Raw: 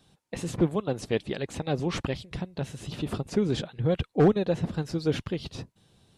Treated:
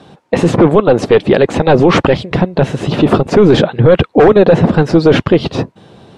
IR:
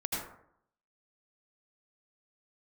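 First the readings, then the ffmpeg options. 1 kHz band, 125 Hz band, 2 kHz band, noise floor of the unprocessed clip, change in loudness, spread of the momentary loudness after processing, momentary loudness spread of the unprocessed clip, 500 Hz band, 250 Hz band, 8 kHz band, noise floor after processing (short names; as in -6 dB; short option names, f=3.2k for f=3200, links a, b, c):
+21.0 dB, +16.0 dB, +20.0 dB, -74 dBFS, +18.0 dB, 7 LU, 14 LU, +20.0 dB, +17.5 dB, n/a, -54 dBFS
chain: -af "bandpass=f=560:t=q:w=0.54:csg=0,apsyclip=29dB,volume=-1.5dB"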